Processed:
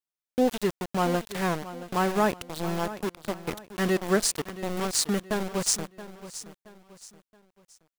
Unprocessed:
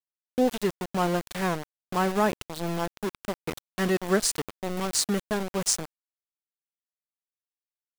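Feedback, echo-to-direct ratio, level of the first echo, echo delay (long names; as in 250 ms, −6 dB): 37%, −14.0 dB, −14.5 dB, 674 ms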